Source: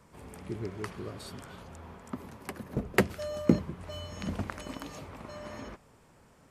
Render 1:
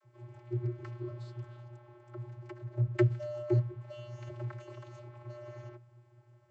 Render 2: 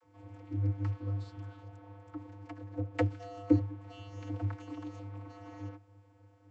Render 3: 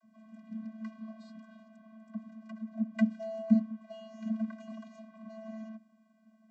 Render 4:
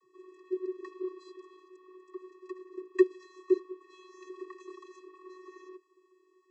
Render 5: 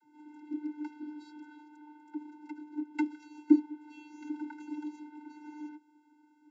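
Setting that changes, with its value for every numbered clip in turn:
vocoder, frequency: 120 Hz, 100 Hz, 220 Hz, 370 Hz, 300 Hz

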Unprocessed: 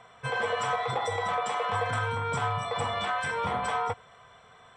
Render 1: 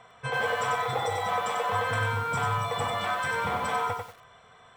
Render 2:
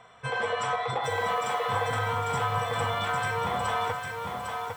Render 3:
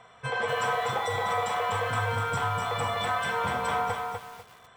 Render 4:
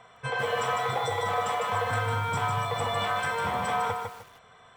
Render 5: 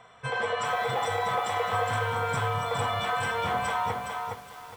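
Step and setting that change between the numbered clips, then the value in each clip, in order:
bit-crushed delay, time: 94 ms, 803 ms, 247 ms, 152 ms, 414 ms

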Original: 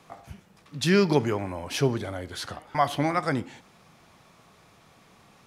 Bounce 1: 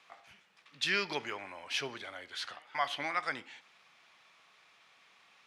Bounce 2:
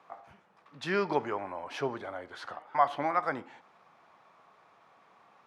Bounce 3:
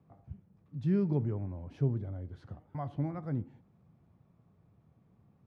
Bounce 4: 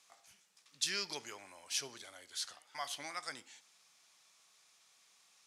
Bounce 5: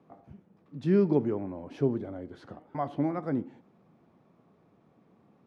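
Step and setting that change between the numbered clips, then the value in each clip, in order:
band-pass filter, frequency: 2.6 kHz, 1 kHz, 100 Hz, 7 kHz, 270 Hz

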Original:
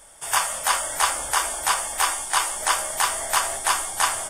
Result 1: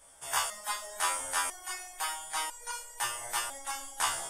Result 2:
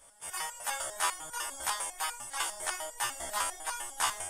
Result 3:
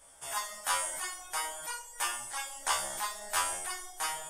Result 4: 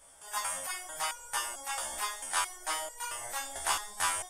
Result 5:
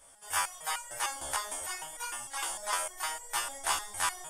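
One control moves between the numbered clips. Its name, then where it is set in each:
resonator arpeggio, rate: 2 Hz, 10 Hz, 3 Hz, 4.5 Hz, 6.6 Hz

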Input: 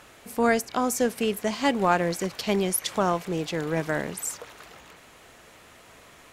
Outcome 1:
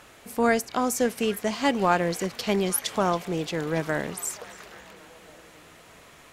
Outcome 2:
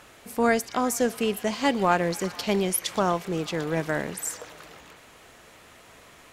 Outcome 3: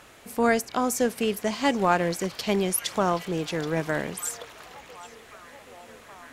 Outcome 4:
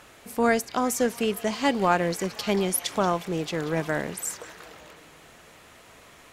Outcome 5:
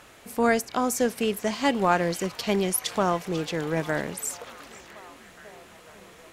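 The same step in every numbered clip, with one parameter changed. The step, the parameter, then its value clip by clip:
repeats whose band climbs or falls, time: 276 ms, 122 ms, 777 ms, 181 ms, 494 ms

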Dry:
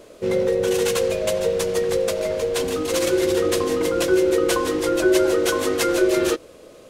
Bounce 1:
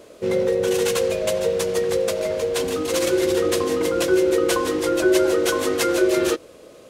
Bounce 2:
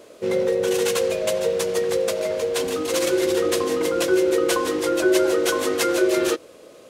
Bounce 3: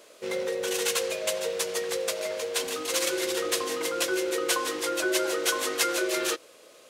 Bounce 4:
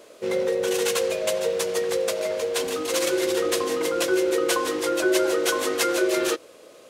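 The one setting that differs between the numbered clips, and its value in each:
high-pass, cutoff frequency: 58 Hz, 200 Hz, 1.4 kHz, 520 Hz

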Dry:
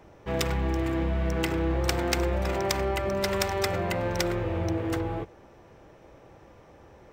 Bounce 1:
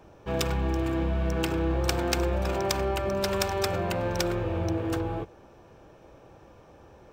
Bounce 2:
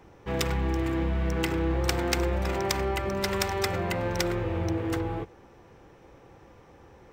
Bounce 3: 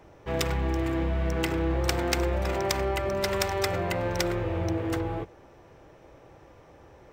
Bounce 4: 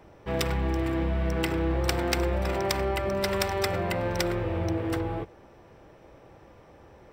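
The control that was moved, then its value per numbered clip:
band-stop, frequency: 2 kHz, 620 Hz, 210 Hz, 6.6 kHz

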